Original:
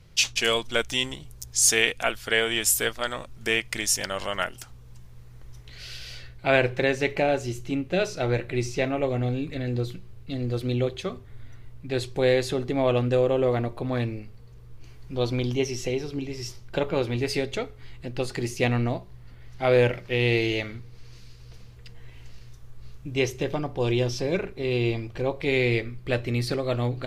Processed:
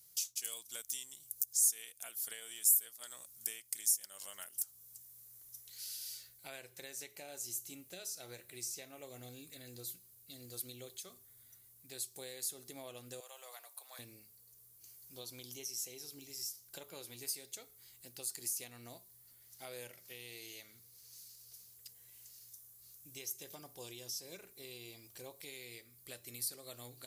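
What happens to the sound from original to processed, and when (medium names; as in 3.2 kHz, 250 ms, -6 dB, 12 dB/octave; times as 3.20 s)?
13.20–13.99 s: high-pass 720 Hz 24 dB/octave
whole clip: differentiator; compression 2.5:1, threshold -46 dBFS; FFT filter 130 Hz 0 dB, 2.7 kHz -16 dB, 12 kHz +7 dB; trim +7.5 dB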